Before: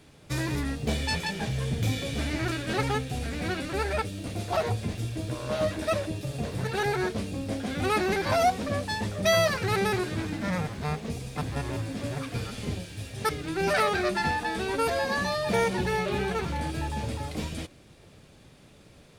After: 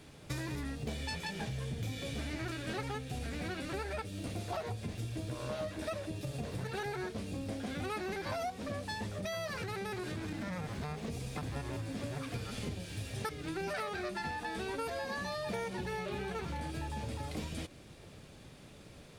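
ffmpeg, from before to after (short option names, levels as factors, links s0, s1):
-filter_complex "[0:a]asettb=1/sr,asplit=3[s0][s1][s2];[s0]atrim=end=9.154[s3];[s1]atrim=start=9.15:end=11.43,asetpts=PTS-STARTPTS,afade=t=in:d=0.004:c=qsin,afade=t=out:st=2.276:d=0.004:c=qsin,acompressor=threshold=0.0355:ratio=6:attack=3.2:release=140:knee=1:detection=peak[s4];[s2]atrim=start=11.426[s5];[s3][s4]acrossfade=d=0.004:c1=hsin:c2=qsin[s6];[s6][s5]acrossfade=d=0.004:c1=qsin:c2=hsin,acompressor=threshold=0.0158:ratio=6"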